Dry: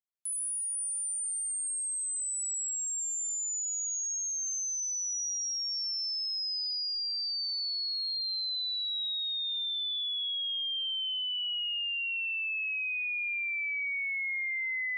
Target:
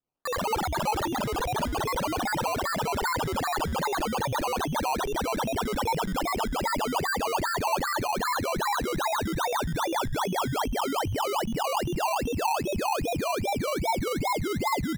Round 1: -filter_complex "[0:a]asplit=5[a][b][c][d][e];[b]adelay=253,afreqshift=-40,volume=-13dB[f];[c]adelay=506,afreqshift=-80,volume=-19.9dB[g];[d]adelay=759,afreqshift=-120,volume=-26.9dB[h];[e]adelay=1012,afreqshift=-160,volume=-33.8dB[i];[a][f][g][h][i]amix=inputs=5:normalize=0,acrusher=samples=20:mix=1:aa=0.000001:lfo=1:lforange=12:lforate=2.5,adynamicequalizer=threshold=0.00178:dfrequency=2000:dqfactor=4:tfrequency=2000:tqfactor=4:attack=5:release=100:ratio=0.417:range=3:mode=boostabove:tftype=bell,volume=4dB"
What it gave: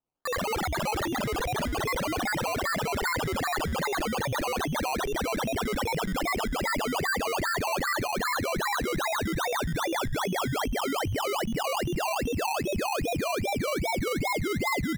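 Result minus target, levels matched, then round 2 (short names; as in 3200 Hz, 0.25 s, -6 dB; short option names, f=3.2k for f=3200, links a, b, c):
2000 Hz band +3.0 dB
-filter_complex "[0:a]asplit=5[a][b][c][d][e];[b]adelay=253,afreqshift=-40,volume=-13dB[f];[c]adelay=506,afreqshift=-80,volume=-19.9dB[g];[d]adelay=759,afreqshift=-120,volume=-26.9dB[h];[e]adelay=1012,afreqshift=-160,volume=-33.8dB[i];[a][f][g][h][i]amix=inputs=5:normalize=0,acrusher=samples=20:mix=1:aa=0.000001:lfo=1:lforange=12:lforate=2.5,adynamicequalizer=threshold=0.00178:dfrequency=910:dqfactor=4:tfrequency=910:tqfactor=4:attack=5:release=100:ratio=0.417:range=3:mode=boostabove:tftype=bell,volume=4dB"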